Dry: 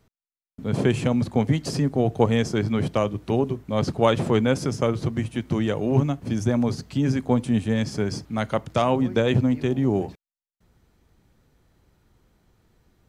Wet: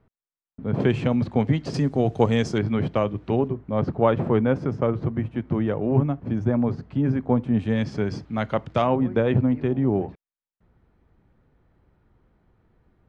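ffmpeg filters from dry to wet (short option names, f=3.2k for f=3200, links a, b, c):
-af "asetnsamples=n=441:p=0,asendcmd='0.8 lowpass f 3300;1.74 lowpass f 6700;2.58 lowpass f 2800;3.48 lowpass f 1600;7.59 lowpass f 3300;8.87 lowpass f 1900',lowpass=1.7k"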